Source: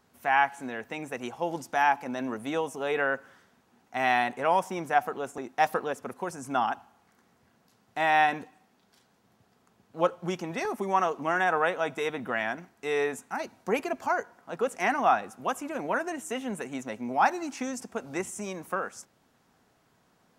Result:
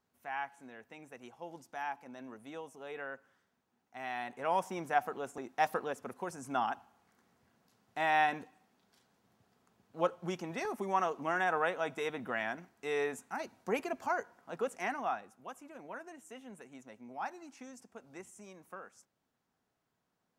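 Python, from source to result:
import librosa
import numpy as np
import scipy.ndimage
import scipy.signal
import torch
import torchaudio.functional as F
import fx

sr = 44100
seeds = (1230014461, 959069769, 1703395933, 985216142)

y = fx.gain(x, sr, db=fx.line((4.12, -15.5), (4.59, -6.0), (14.58, -6.0), (15.42, -16.5)))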